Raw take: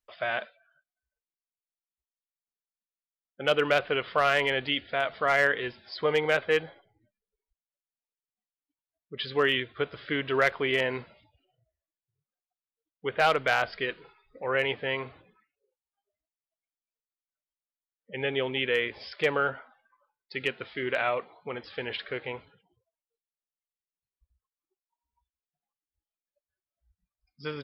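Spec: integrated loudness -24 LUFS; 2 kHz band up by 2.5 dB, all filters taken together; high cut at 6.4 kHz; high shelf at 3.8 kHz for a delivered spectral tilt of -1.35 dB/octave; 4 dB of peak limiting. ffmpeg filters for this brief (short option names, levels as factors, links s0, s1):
-af "lowpass=6400,equalizer=f=2000:t=o:g=4,highshelf=f=3800:g=-3.5,volume=1.68,alimiter=limit=0.316:level=0:latency=1"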